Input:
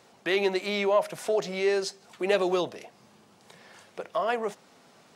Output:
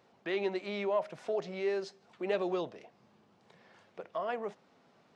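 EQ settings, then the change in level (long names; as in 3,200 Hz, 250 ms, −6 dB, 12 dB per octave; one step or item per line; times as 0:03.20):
head-to-tape spacing loss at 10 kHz 29 dB
high-shelf EQ 3,700 Hz +9 dB
−6.0 dB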